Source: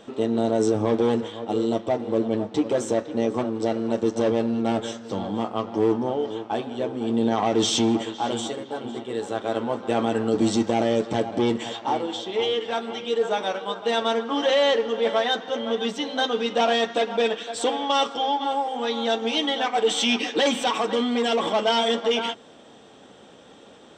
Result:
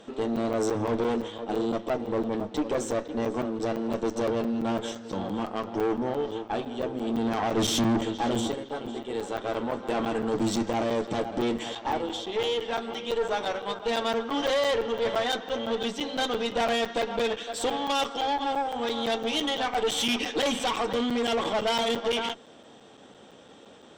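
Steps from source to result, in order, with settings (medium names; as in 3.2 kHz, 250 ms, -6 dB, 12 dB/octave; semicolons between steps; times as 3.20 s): 7.57–8.54 s: bass shelf 310 Hz +12 dB; valve stage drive 21 dB, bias 0.5; crackling interface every 0.17 s, samples 256, zero, from 0.36 s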